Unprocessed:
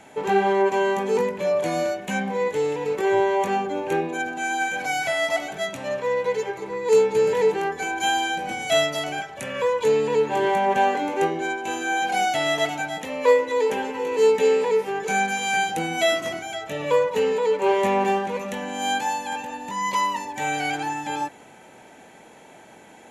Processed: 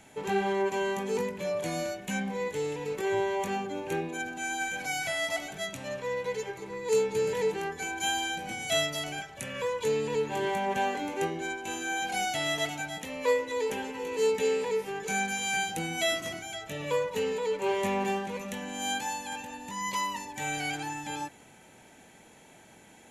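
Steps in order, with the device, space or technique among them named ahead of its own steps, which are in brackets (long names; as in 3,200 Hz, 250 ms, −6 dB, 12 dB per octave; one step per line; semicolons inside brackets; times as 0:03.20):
smiley-face EQ (low-shelf EQ 91 Hz +6.5 dB; parametric band 690 Hz −7 dB 3 octaves; high-shelf EQ 9,000 Hz +4 dB)
level −3 dB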